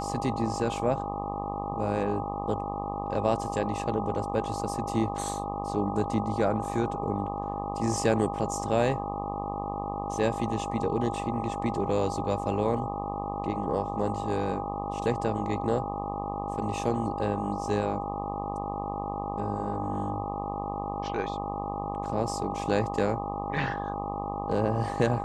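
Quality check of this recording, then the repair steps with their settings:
mains buzz 50 Hz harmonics 25 −35 dBFS
whistle 810 Hz −34 dBFS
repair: hum removal 50 Hz, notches 25
notch filter 810 Hz, Q 30

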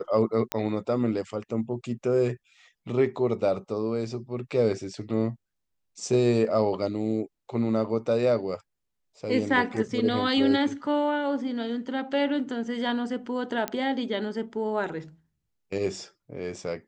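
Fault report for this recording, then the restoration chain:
0:00.52: click −10 dBFS
0:13.68: click −12 dBFS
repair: click removal

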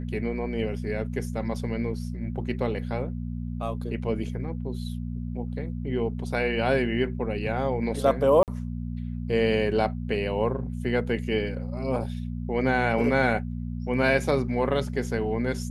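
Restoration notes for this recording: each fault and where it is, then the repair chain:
mains hum 60 Hz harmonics 4 −32 dBFS
0:08.43–0:08.48: drop-out 48 ms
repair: hum removal 60 Hz, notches 4
repair the gap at 0:08.43, 48 ms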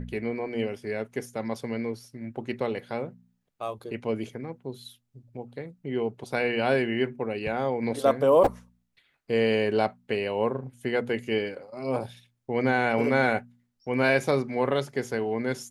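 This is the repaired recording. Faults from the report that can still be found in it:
none of them is left

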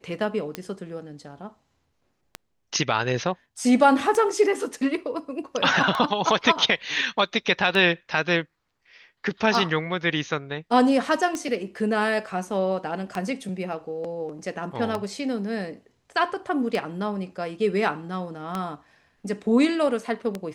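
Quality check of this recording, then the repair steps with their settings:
scratch tick 33 1/3 rpm −14 dBFS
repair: click removal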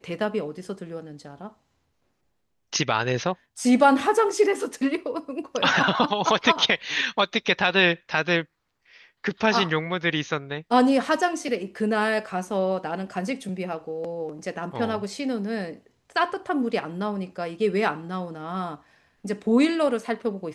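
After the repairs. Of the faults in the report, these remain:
none of them is left

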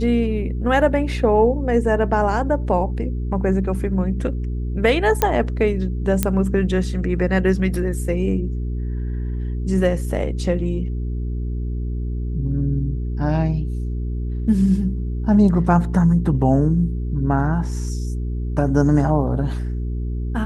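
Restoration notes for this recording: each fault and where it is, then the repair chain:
mains hum 60 Hz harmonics 7 −24 dBFS
0:05.22: click −3 dBFS
0:06.23: click −3 dBFS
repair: click removal
hum removal 60 Hz, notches 7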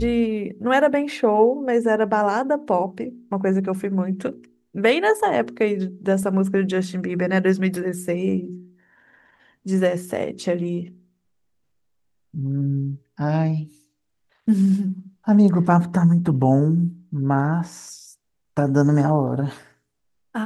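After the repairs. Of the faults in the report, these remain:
none of them is left

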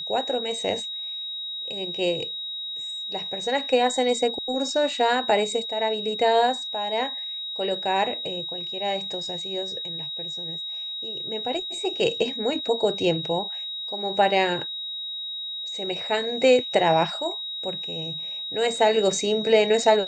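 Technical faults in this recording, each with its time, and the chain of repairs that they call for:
whistle 3,800 Hz −30 dBFS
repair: notch filter 3,800 Hz, Q 30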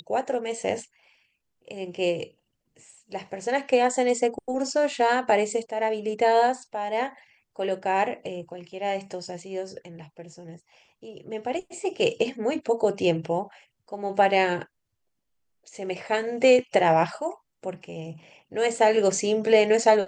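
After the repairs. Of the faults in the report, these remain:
none of them is left

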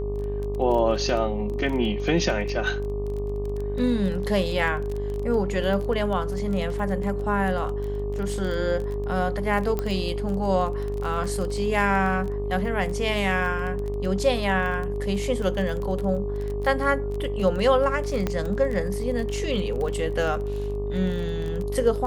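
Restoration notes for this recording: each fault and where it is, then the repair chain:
mains buzz 50 Hz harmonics 24 −30 dBFS
surface crackle 21 per second −29 dBFS
whistle 410 Hz −29 dBFS
0:09.79: click −14 dBFS
0:18.27: click −12 dBFS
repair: click removal
hum removal 50 Hz, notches 24
notch filter 410 Hz, Q 30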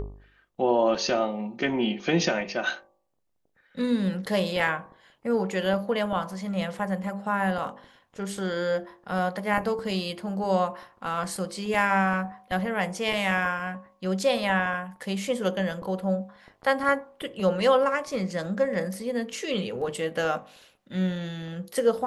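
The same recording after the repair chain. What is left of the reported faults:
none of them is left

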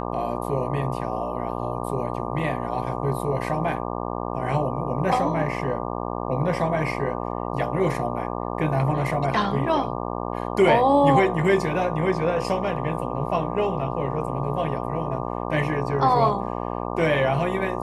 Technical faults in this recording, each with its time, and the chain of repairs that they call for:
mains buzz 60 Hz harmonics 20 −29 dBFS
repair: hum removal 60 Hz, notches 20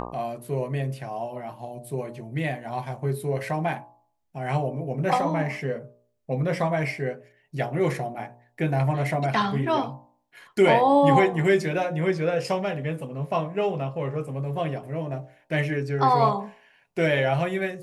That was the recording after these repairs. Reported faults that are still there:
none of them is left

